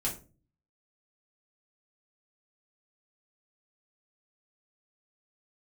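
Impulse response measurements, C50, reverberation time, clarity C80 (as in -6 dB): 10.5 dB, 0.35 s, 16.5 dB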